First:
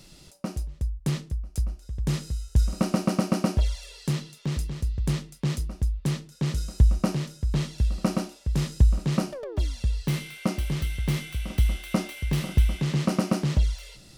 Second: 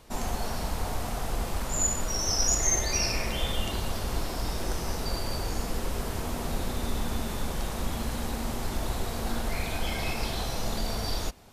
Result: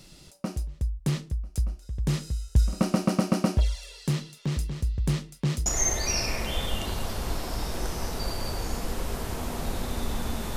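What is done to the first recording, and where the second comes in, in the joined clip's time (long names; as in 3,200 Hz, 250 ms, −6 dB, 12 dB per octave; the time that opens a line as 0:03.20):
first
0:05.66: continue with second from 0:02.52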